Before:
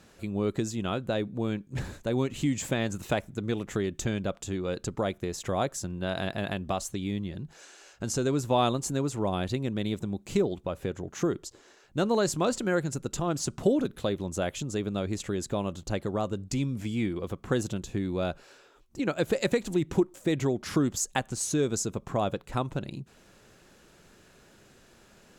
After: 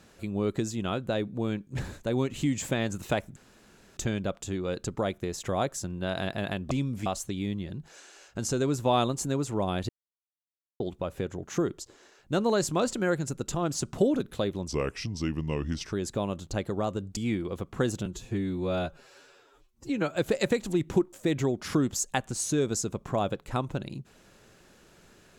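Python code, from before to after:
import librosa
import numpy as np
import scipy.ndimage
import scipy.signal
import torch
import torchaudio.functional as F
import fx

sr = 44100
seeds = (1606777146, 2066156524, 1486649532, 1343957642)

y = fx.edit(x, sr, fx.room_tone_fill(start_s=3.36, length_s=0.61),
    fx.silence(start_s=9.54, length_s=0.91),
    fx.speed_span(start_s=14.33, length_s=0.96, speed=0.77),
    fx.move(start_s=16.53, length_s=0.35, to_s=6.71),
    fx.stretch_span(start_s=17.77, length_s=1.4, factor=1.5), tone=tone)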